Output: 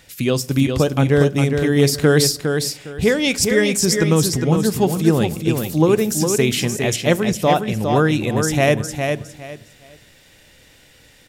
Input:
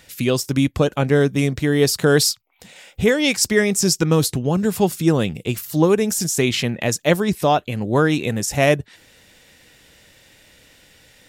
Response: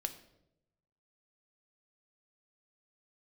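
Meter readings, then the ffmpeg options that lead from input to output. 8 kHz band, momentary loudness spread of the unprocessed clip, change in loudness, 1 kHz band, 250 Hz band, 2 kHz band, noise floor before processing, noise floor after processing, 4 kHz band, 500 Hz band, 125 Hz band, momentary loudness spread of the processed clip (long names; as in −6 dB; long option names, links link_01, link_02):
+0.5 dB, 5 LU, +1.0 dB, +1.0 dB, +1.5 dB, +0.5 dB, −54 dBFS, −50 dBFS, +0.5 dB, +1.5 dB, +3.0 dB, 6 LU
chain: -filter_complex "[0:a]aecho=1:1:408|816|1224:0.531|0.122|0.0281,asplit=2[link_01][link_02];[1:a]atrim=start_sample=2205,lowshelf=frequency=240:gain=8.5[link_03];[link_02][link_03]afir=irnorm=-1:irlink=0,volume=-8.5dB[link_04];[link_01][link_04]amix=inputs=2:normalize=0,volume=-3dB"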